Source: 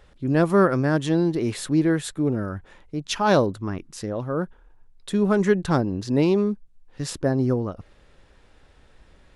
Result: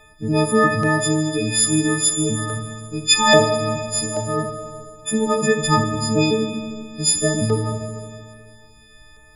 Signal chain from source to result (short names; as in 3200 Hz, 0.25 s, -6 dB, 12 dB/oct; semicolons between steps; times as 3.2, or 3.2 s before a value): frequency quantiser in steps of 6 st; LFO notch saw down 1.2 Hz 420–5800 Hz; Schroeder reverb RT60 2 s, combs from 27 ms, DRR 4 dB; gain +3 dB